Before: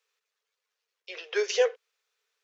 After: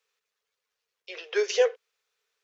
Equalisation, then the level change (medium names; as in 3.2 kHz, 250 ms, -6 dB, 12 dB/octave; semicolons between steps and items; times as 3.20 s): bass shelf 300 Hz +6 dB; 0.0 dB